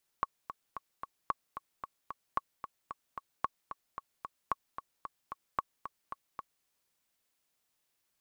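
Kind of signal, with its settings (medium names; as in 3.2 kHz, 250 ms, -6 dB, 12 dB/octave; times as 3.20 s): metronome 224 bpm, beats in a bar 4, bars 6, 1.11 kHz, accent 10.5 dB -16 dBFS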